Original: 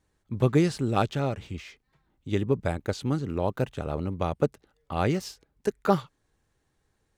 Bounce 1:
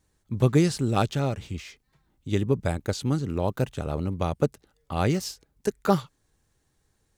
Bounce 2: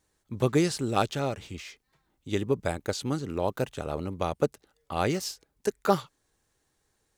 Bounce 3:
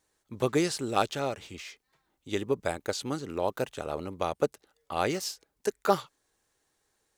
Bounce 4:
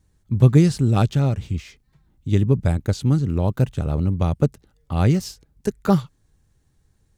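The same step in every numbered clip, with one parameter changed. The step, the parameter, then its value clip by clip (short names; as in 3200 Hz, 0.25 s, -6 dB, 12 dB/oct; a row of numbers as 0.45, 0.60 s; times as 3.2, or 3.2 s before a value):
tone controls, bass: +3, -5, -13, +13 dB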